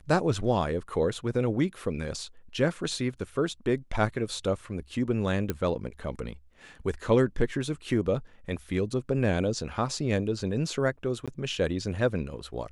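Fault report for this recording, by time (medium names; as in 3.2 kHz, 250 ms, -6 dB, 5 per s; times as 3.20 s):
5.50 s: pop -14 dBFS
11.26–11.28 s: dropout 16 ms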